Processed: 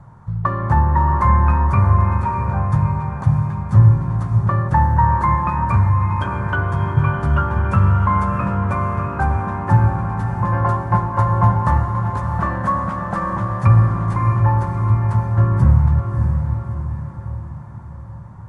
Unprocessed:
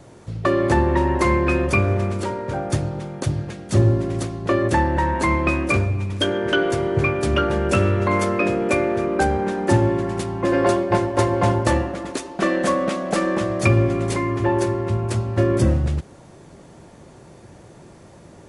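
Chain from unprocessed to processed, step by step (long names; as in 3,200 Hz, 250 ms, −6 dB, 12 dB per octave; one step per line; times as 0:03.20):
drawn EQ curve 160 Hz 0 dB, 340 Hz −22 dB, 660 Hz −14 dB, 960 Hz +1 dB, 1,600 Hz −8 dB, 2,600 Hz −23 dB, 5,300 Hz −25 dB
feedback delay with all-pass diffusion 643 ms, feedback 49%, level −6 dB
level +6.5 dB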